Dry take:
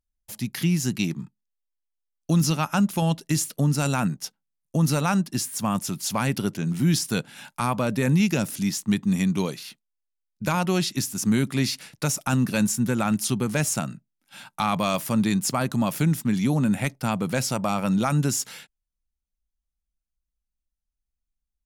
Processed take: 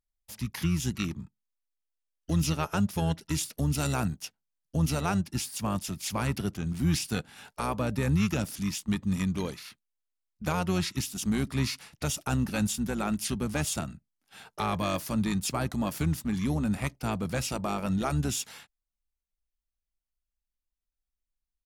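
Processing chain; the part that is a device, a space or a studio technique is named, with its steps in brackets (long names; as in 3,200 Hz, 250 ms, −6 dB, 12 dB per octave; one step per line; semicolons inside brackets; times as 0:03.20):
0:03.58–0:04.22: high-shelf EQ 10,000 Hz +8.5 dB
octave pedal (pitch-shifted copies added −12 semitones −6 dB)
level −6.5 dB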